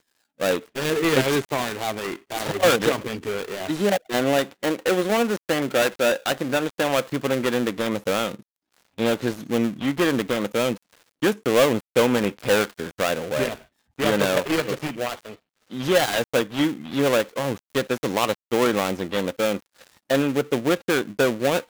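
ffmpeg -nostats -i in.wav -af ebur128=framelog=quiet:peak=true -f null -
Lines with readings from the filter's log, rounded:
Integrated loudness:
  I:         -23.3 LUFS
  Threshold: -33.6 LUFS
Loudness range:
  LRA:         2.4 LU
  Threshold: -43.6 LUFS
  LRA low:   -25.0 LUFS
  LRA high:  -22.6 LUFS
True peak:
  Peak:       -3.4 dBFS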